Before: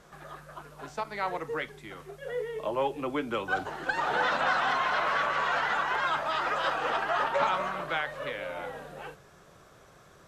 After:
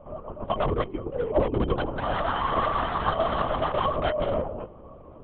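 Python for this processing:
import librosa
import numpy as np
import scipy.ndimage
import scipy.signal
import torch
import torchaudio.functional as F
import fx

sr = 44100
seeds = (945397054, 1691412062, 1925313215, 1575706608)

y = fx.wiener(x, sr, points=25)
y = fx.rider(y, sr, range_db=5, speed_s=0.5)
y = np.clip(y, -10.0 ** (-28.0 / 20.0), 10.0 ** (-28.0 / 20.0))
y = fx.stretch_vocoder(y, sr, factor=0.51)
y = fx.small_body(y, sr, hz=(340.0, 620.0, 1100.0, 3100.0), ring_ms=70, db=15)
y = fx.lpc_vocoder(y, sr, seeds[0], excitation='whisper', order=10)
y = y * 10.0 ** (3.5 / 20.0)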